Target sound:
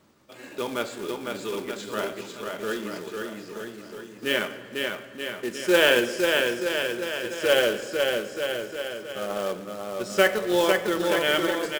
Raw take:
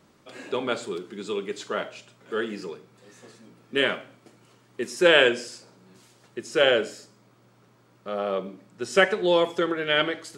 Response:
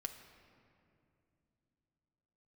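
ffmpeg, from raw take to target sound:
-filter_complex "[0:a]aecho=1:1:440|814|1132|1402|1632:0.631|0.398|0.251|0.158|0.1,atempo=0.88,acrusher=bits=3:mode=log:mix=0:aa=0.000001,asplit=2[a][b];[1:a]atrim=start_sample=2205,asetrate=33516,aresample=44100[c];[b][c]afir=irnorm=-1:irlink=0,volume=0dB[d];[a][d]amix=inputs=2:normalize=0,volume=-7dB"

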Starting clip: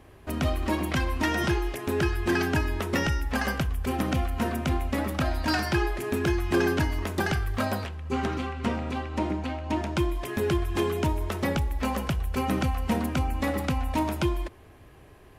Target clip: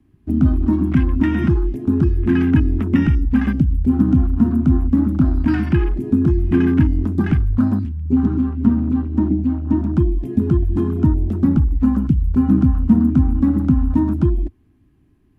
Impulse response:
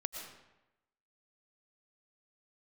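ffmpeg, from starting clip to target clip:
-filter_complex "[0:a]afwtdn=0.0316,lowshelf=f=380:t=q:w=3:g=11,acrossover=split=310|650|2200[a][b][c][d];[b]acompressor=threshold=-30dB:ratio=6[e];[a][e][c][d]amix=inputs=4:normalize=0"

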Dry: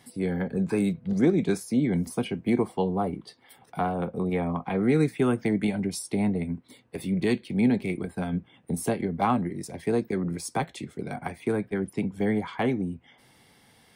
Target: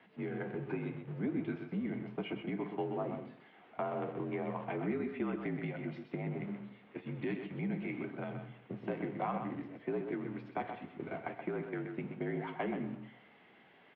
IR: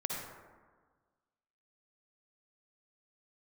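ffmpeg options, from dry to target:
-filter_complex "[0:a]aeval=exprs='val(0)+0.5*0.0133*sgn(val(0))':c=same,agate=range=-11dB:threshold=-32dB:ratio=16:detection=peak,acompressor=threshold=-27dB:ratio=3,flanger=delay=5.8:depth=2.9:regen=-69:speed=0.72:shape=triangular,aecho=1:1:127:0.422,asplit=2[a][b];[1:a]atrim=start_sample=2205,afade=t=out:st=0.31:d=0.01,atrim=end_sample=14112[c];[b][c]afir=irnorm=-1:irlink=0,volume=-12.5dB[d];[a][d]amix=inputs=2:normalize=0,highpass=f=240:t=q:w=0.5412,highpass=f=240:t=q:w=1.307,lowpass=f=3k:t=q:w=0.5176,lowpass=f=3k:t=q:w=0.7071,lowpass=f=3k:t=q:w=1.932,afreqshift=-50,volume=-3.5dB"

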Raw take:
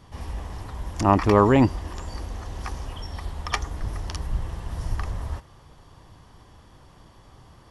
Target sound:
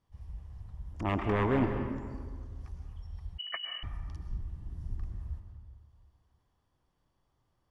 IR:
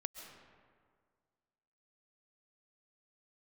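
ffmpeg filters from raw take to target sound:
-filter_complex "[0:a]aeval=exprs='0.266*(abs(mod(val(0)/0.266+3,4)-2)-1)':c=same,afwtdn=0.0355[a];[1:a]atrim=start_sample=2205,asetrate=48510,aresample=44100[b];[a][b]afir=irnorm=-1:irlink=0,asettb=1/sr,asplit=3[c][d][e];[c]atrim=end=3.384[f];[d]atrim=start=3.38:end=3.83,asetpts=PTS-STARTPTS,afade=t=in:d=0.004:c=qsin,afade=t=out:st=0.446:d=0.004:c=qsin,lowpass=f=2.6k:t=q:w=0.5098,lowpass=f=2.6k:t=q:w=0.6013,lowpass=f=2.6k:t=q:w=0.9,lowpass=f=2.6k:t=q:w=2.563,afreqshift=-3000[g];[e]atrim=start=3.826[h];[f][g]acrossfade=d=0.004:c1=hsin:c2=qsin[i];[i][h]acrossfade=d=0.004:c1=qsin:c2=hsin,volume=-6.5dB"

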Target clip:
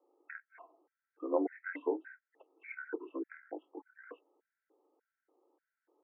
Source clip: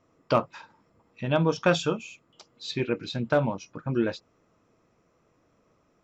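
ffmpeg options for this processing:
-af "highpass=f=170:t=q:w=0.5412,highpass=f=170:t=q:w=1.307,lowpass=f=3.6k:t=q:w=0.5176,lowpass=f=3.6k:t=q:w=0.7071,lowpass=f=3.6k:t=q:w=1.932,afreqshift=380,asetrate=23361,aresample=44100,atempo=1.88775,afftfilt=real='re*gt(sin(2*PI*1.7*pts/sr)*(1-2*mod(floor(b*sr/1024/1300),2)),0)':imag='im*gt(sin(2*PI*1.7*pts/sr)*(1-2*mod(floor(b*sr/1024/1300),2)),0)':win_size=1024:overlap=0.75,volume=-5.5dB"

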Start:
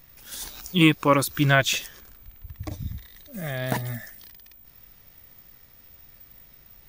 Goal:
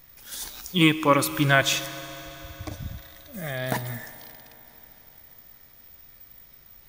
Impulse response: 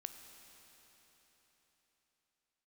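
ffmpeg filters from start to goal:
-filter_complex "[0:a]bandreject=f=2.7k:w=23,asplit=2[a][b];[1:a]atrim=start_sample=2205,lowshelf=f=220:g=-10.5[c];[b][c]afir=irnorm=-1:irlink=0,volume=5dB[d];[a][d]amix=inputs=2:normalize=0,volume=-5.5dB"

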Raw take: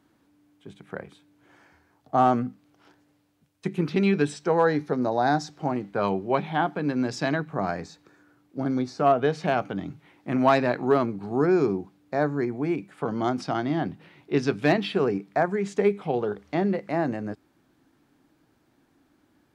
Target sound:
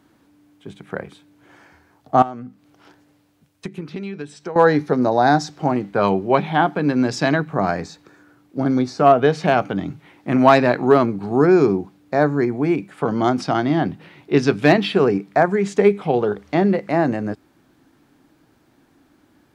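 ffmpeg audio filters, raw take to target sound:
-filter_complex "[0:a]asettb=1/sr,asplit=3[a][b][c];[a]atrim=end=2.224[d];[b]atrim=start=2.22:end=4.56,asetpts=PTS-STARTPTS,afade=t=in:d=0.004:c=qsin,afade=t=out:st=2.336:d=0.004:c=qsin,acompressor=threshold=-35dB:ratio=8[e];[c]atrim=start=4.556[f];[d][e]acrossfade=d=0.004:c1=hsin:c2=qsin[g];[g][f]acrossfade=d=0.004:c1=qsin:c2=hsin,volume=7.5dB"

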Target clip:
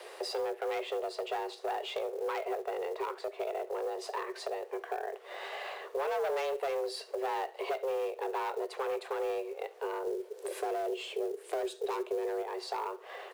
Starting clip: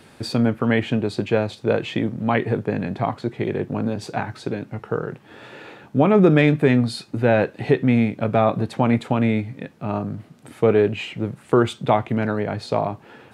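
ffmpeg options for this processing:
-filter_complex "[0:a]asoftclip=type=hard:threshold=-17dB,asettb=1/sr,asplit=3[a][b][c];[a]atrim=end=10.064[d];[b]atrim=start=10.06:end=12.42,asetpts=PTS-STARTPTS,afade=t=in:d=0.004:c=qsin,afade=t=out:st=2.356:d=0.004:c=qsin,bass=f=250:g=12,treble=f=4k:g=8[e];[c]atrim=start=12.416[f];[d][e]acrossfade=d=0.004:c1=hsin:c2=qsin[g];[g][f]acrossfade=d=0.004:c1=qsin:c2=hsin,acompressor=threshold=-35dB:ratio=4,asoftclip=type=tanh:threshold=-25.5dB,highpass=93,aecho=1:1:70|140:0.1|0.029,afreqshift=270,acrusher=bits=6:mode=log:mix=0:aa=0.000001,lowshelf=f=250:g=8.5"

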